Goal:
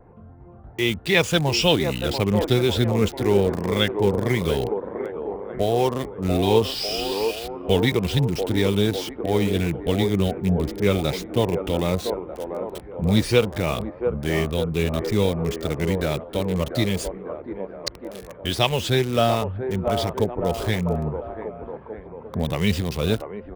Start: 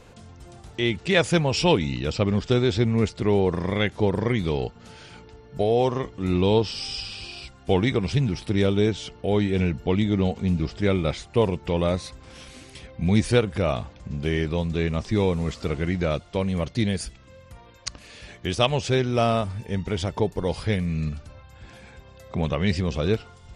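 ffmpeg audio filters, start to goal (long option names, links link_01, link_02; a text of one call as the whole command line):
ffmpeg -i in.wav -filter_complex "[0:a]afftfilt=real='re*pow(10,7/40*sin(2*PI*(0.79*log(max(b,1)*sr/1024/100)/log(2)-(2.8)*(pts-256)/sr)))':imag='im*pow(10,7/40*sin(2*PI*(0.79*log(max(b,1)*sr/1024/100)/log(2)-(2.8)*(pts-256)/sr)))':win_size=1024:overlap=0.75,adynamicequalizer=threshold=0.00708:dfrequency=3500:dqfactor=1.5:tfrequency=3500:tqfactor=1.5:attack=5:release=100:ratio=0.375:range=2.5:mode=boostabove:tftype=bell,acrossover=split=270|1400[link_01][link_02][link_03];[link_02]aecho=1:1:690|1242|1684|2037|2320:0.631|0.398|0.251|0.158|0.1[link_04];[link_03]acrusher=bits=5:mix=0:aa=0.000001[link_05];[link_01][link_04][link_05]amix=inputs=3:normalize=0" out.wav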